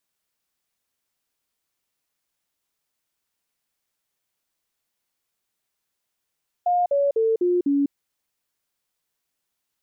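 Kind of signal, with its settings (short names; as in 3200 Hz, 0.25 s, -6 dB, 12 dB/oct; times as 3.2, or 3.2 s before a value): stepped sine 711 Hz down, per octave 3, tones 5, 0.20 s, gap 0.05 s -17 dBFS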